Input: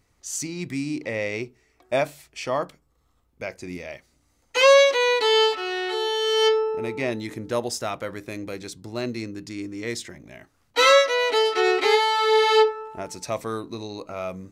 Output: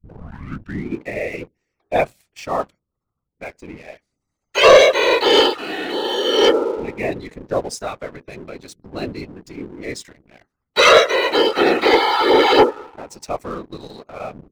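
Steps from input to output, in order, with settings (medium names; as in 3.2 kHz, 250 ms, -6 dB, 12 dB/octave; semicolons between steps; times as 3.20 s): tape start-up on the opening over 0.93 s; spectral gate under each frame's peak -25 dB strong; whisper effect; waveshaping leveller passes 2; upward expansion 1.5:1, over -24 dBFS; trim +1 dB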